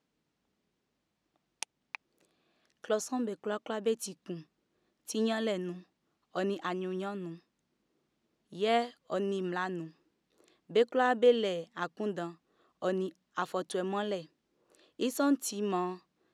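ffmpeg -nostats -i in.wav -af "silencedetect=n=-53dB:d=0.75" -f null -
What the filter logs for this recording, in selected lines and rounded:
silence_start: 0.00
silence_end: 1.62 | silence_duration: 1.62
silence_start: 7.39
silence_end: 8.52 | silence_duration: 1.13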